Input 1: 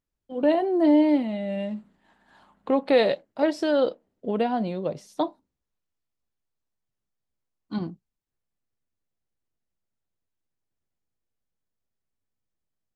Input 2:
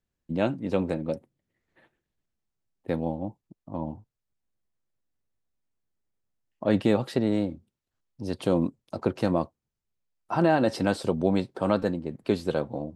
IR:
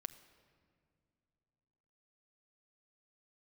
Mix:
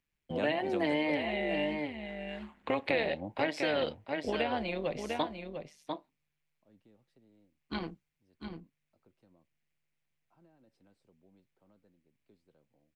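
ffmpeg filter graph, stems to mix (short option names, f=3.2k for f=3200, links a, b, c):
-filter_complex "[0:a]equalizer=f=2.3k:t=o:w=1:g=14,bandreject=f=1.3k:w=22,tremolo=f=150:d=0.667,volume=1dB,asplit=3[a][b][c];[b]volume=-10.5dB[d];[1:a]acrossover=split=380[e][f];[f]acompressor=threshold=-29dB:ratio=6[g];[e][g]amix=inputs=2:normalize=0,volume=-3dB[h];[c]apad=whole_len=571502[i];[h][i]sidechaingate=range=-37dB:threshold=-58dB:ratio=16:detection=peak[j];[d]aecho=0:1:697:1[k];[a][j][k]amix=inputs=3:normalize=0,acrossover=split=400|1500[l][m][n];[l]acompressor=threshold=-39dB:ratio=4[o];[m]acompressor=threshold=-32dB:ratio=4[p];[n]acompressor=threshold=-36dB:ratio=4[q];[o][p][q]amix=inputs=3:normalize=0"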